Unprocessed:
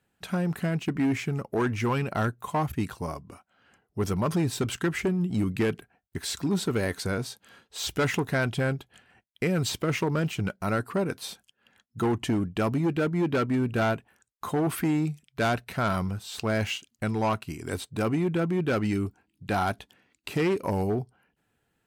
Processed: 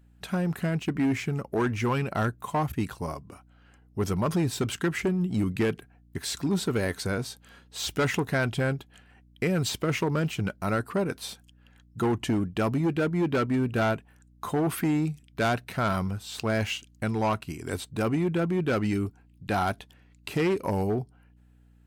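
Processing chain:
mains hum 60 Hz, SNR 29 dB
tape wow and flutter 18 cents

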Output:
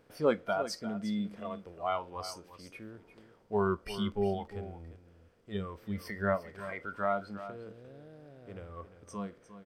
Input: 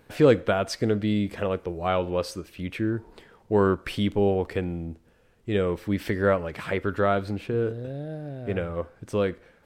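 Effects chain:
compressor on every frequency bin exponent 0.6
noise reduction from a noise print of the clip's start 18 dB
single-tap delay 352 ms −13 dB
level −7.5 dB

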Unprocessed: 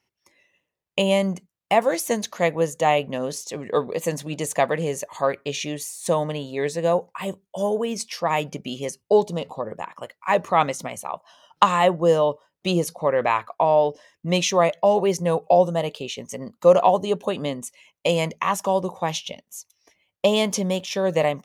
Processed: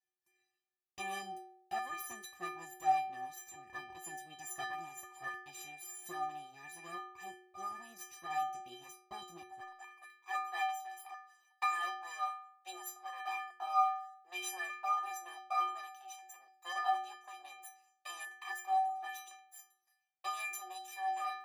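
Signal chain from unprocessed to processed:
lower of the sound and its delayed copy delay 1.1 ms
high-pass filter 70 Hz 24 dB per octave, from 0:09.61 580 Hz
stiff-string resonator 360 Hz, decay 0.84 s, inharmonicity 0.03
level +5.5 dB

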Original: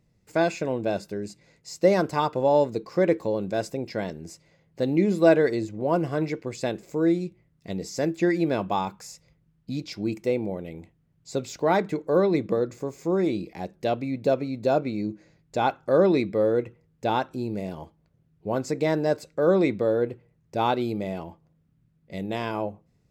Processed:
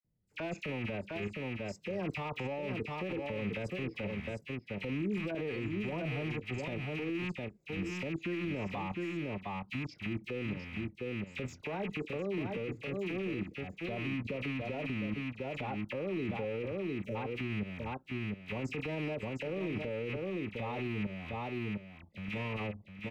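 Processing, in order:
loose part that buzzes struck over −36 dBFS, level −11 dBFS
noise reduction from a noise print of the clip's start 9 dB
output level in coarse steps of 14 dB
high-shelf EQ 3,300 Hz −11.5 dB
all-pass dispersion lows, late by 46 ms, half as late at 1,900 Hz
time-frequency box erased 0:16.83–0:17.15, 610–5,400 Hz
single-tap delay 707 ms −8.5 dB
brickwall limiter −29.5 dBFS, peak gain reduction 22 dB
low-shelf EQ 430 Hz +8 dB
level −3 dB

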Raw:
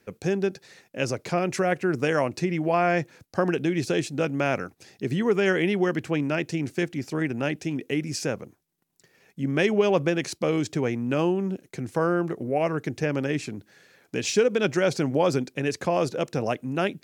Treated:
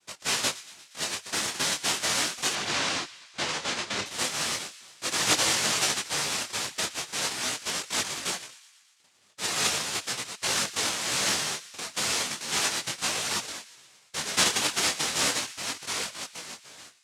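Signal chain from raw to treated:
fade-out on the ending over 2.02 s
0:09.77–0:10.49: high-pass filter 920 Hz → 300 Hz 12 dB per octave
cochlear-implant simulation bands 1
0:02.53–0:04.06: high-frequency loss of the air 90 metres
delay with a high-pass on its return 118 ms, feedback 65%, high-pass 1,600 Hz, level −17.5 dB
micro pitch shift up and down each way 13 cents

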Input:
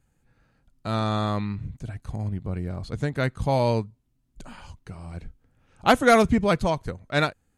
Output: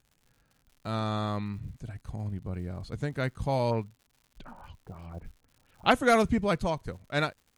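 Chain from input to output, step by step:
0:03.70–0:05.90: auto-filter low-pass sine 1.6 Hz → 6.2 Hz 720–3,700 Hz
surface crackle 140 per second −44 dBFS
level −5.5 dB

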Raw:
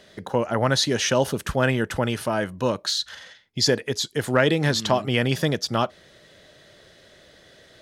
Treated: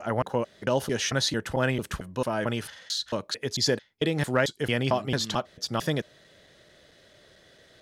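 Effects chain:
slices reordered back to front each 223 ms, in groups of 3
level −4.5 dB

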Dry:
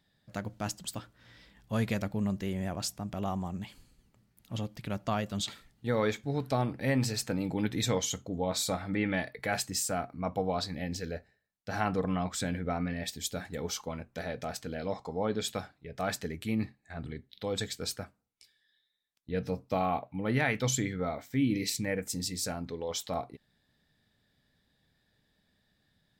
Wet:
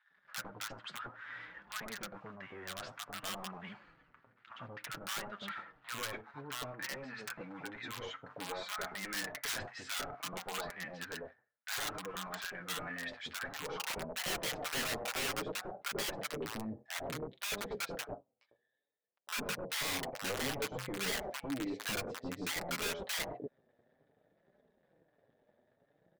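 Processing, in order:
low-pass filter 2,600 Hz 12 dB per octave
low-shelf EQ 88 Hz +7.5 dB
downward compressor 8 to 1, threshold −41 dBFS, peak gain reduction 18.5 dB
leveller curve on the samples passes 2
band-pass filter sweep 1,400 Hz → 570 Hz, 0:13.31–0:14.25
wrap-around overflow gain 42.5 dB
flanger 0.57 Hz, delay 4.6 ms, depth 4 ms, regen −16%
multiband delay without the direct sound highs, lows 100 ms, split 920 Hz
level +15.5 dB

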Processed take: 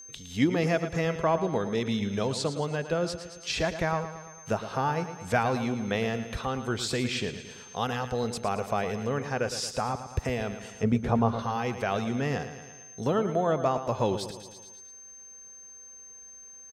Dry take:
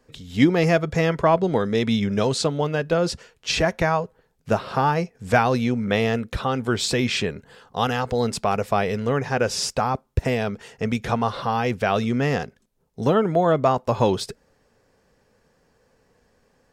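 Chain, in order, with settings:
steady tone 6,300 Hz −46 dBFS
0:10.83–0:11.39: tilt shelving filter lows +8 dB, about 1,300 Hz
on a send: repeating echo 112 ms, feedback 52%, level −11 dB
on the sum: one half of a high-frequency compander encoder only
level −7.5 dB

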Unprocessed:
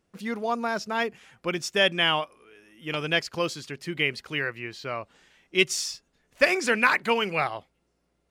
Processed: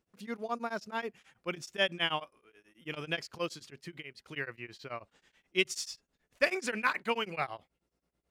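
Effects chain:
0:03.66–0:04.26: downward compressor 4 to 1, threshold −34 dBFS, peak gain reduction 12.5 dB
tremolo along a rectified sine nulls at 9.3 Hz
level −6 dB

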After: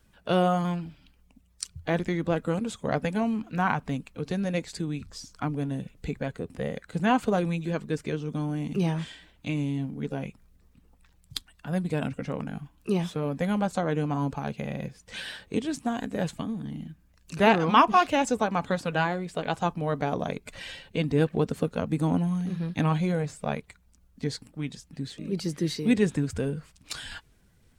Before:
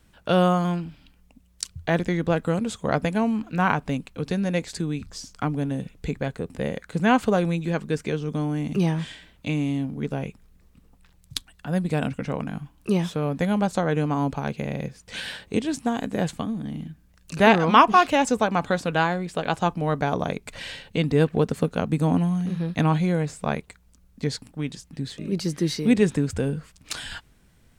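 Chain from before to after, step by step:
spectral magnitudes quantised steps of 15 dB
level −3.5 dB

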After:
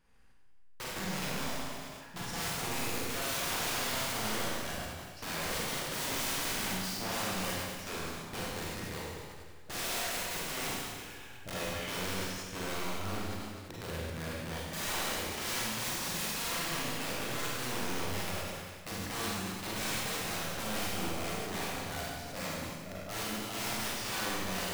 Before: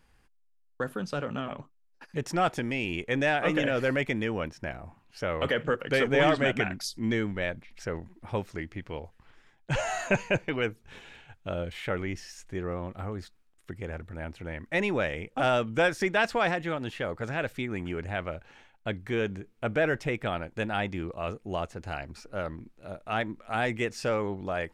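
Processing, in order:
wrap-around overflow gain 28 dB
four-comb reverb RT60 1.8 s, combs from 33 ms, DRR −6 dB
level that may fall only so fast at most 32 dB per second
level −8 dB

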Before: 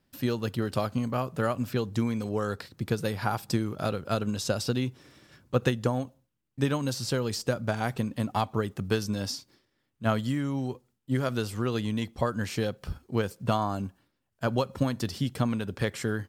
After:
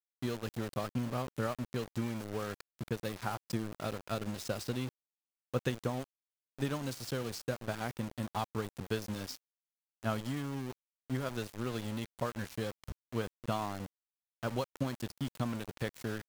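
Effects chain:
0:00.88–0:01.47: parametric band 120 Hz +3 dB 2.8 octaves
centre clipping without the shift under −31.5 dBFS
level −8 dB

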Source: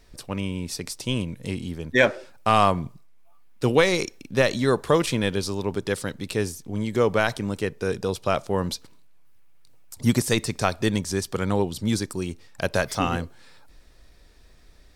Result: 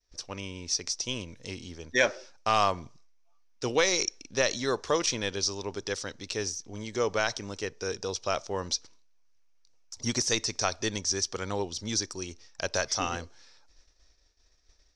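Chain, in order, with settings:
downward expander −44 dBFS
transistor ladder low-pass 6,200 Hz, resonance 75%
parametric band 160 Hz −10.5 dB 1.4 octaves
level +6.5 dB

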